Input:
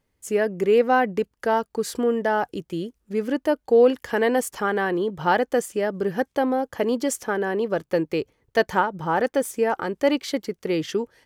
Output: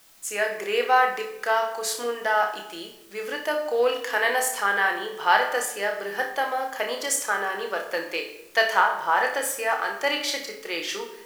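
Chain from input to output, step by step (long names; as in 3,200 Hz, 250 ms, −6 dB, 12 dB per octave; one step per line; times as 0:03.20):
high-pass filter 1,000 Hz 12 dB per octave
in parallel at −10 dB: bit-depth reduction 8 bits, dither triangular
on the sum: flutter between parallel walls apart 5.1 metres, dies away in 0.28 s
rectangular room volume 270 cubic metres, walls mixed, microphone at 0.68 metres
level +1.5 dB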